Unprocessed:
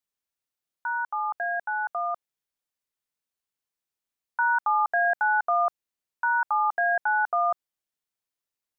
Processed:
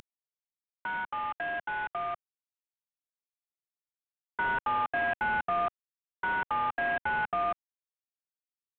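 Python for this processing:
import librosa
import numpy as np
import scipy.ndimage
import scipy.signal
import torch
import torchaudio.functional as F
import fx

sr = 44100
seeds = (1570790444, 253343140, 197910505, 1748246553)

y = fx.cvsd(x, sr, bps=16000)
y = fx.pre_swell(y, sr, db_per_s=22.0)
y = y * 10.0 ** (-5.0 / 20.0)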